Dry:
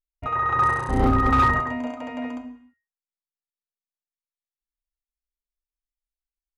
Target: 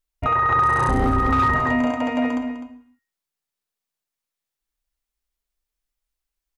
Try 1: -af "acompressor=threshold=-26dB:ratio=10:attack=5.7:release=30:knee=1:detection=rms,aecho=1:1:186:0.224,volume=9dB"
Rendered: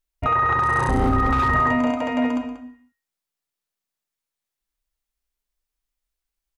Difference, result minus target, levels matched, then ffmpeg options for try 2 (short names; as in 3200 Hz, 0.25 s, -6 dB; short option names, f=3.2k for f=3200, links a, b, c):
echo 67 ms early
-af "acompressor=threshold=-26dB:ratio=10:attack=5.7:release=30:knee=1:detection=rms,aecho=1:1:253:0.224,volume=9dB"